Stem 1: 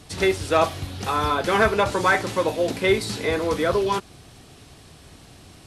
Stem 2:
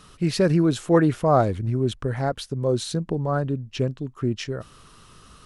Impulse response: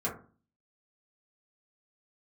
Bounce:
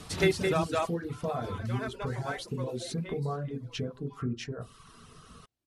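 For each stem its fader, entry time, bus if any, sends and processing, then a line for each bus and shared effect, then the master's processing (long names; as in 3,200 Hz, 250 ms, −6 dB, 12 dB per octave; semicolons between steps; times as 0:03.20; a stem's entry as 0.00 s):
0:00.59 0 dB → 0:00.82 −9 dB → 0:02.62 −9 dB → 0:03.29 −21.5 dB, 0.00 s, no send, echo send −10 dB, automatic ducking −20 dB, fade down 1.10 s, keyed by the second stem
−7.0 dB, 0.00 s, send −3.5 dB, no echo send, brickwall limiter −14 dBFS, peak gain reduction 8 dB; downward compressor 6 to 1, threshold −30 dBFS, peak gain reduction 11.5 dB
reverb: on, RT60 0.40 s, pre-delay 3 ms
echo: single-tap delay 212 ms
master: reverb reduction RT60 0.61 s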